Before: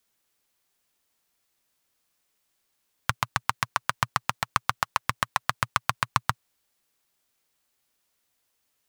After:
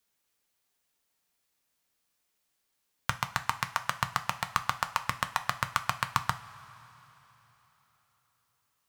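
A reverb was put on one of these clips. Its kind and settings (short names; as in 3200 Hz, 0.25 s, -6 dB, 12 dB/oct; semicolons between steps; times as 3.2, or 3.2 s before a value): two-slope reverb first 0.3 s, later 3.9 s, from -18 dB, DRR 8 dB; gain -4 dB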